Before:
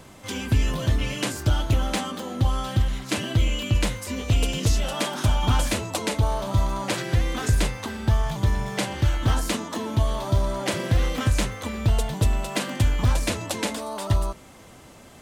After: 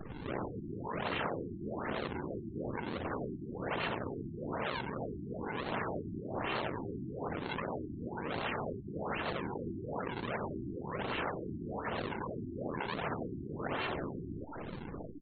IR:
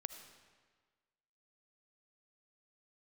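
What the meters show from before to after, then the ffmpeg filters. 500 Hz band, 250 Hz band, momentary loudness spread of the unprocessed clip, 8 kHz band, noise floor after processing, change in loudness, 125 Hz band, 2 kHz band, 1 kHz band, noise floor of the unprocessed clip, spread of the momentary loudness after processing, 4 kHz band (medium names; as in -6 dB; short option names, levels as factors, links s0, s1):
-7.5 dB, -9.5 dB, 5 LU, under -40 dB, -45 dBFS, -13.5 dB, -20.0 dB, -8.5 dB, -8.0 dB, -48 dBFS, 5 LU, -16.0 dB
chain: -af "aresample=16000,asoftclip=type=tanh:threshold=0.0596,aresample=44100,aeval=exprs='val(0)*sin(2*PI*32*n/s)':c=same,equalizer=f=160:t=o:w=0.67:g=10,equalizer=f=630:t=o:w=0.67:g=-11,equalizer=f=2500:t=o:w=0.67:g=-11,acrusher=bits=4:mode=log:mix=0:aa=0.000001,highpass=f=120:w=0.5412,highpass=f=120:w=1.3066,equalizer=f=470:t=o:w=0.74:g=-12.5,aeval=exprs='val(0)+0.00501*sin(2*PI*2900*n/s)':c=same,aecho=1:1:90|180|270|360|450|540:0.708|0.319|0.143|0.0645|0.029|0.0131,acrusher=samples=41:mix=1:aa=0.000001:lfo=1:lforange=65.6:lforate=1.5,aeval=exprs='abs(val(0))':c=same,afftfilt=real='re*lt(hypot(re,im),0.0708)':imag='im*lt(hypot(re,im),0.0708)':win_size=1024:overlap=0.75,afftfilt=real='re*lt(b*sr/1024,370*pow(4500/370,0.5+0.5*sin(2*PI*1.1*pts/sr)))':imag='im*lt(b*sr/1024,370*pow(4500/370,0.5+0.5*sin(2*PI*1.1*pts/sr)))':win_size=1024:overlap=0.75,volume=1.68"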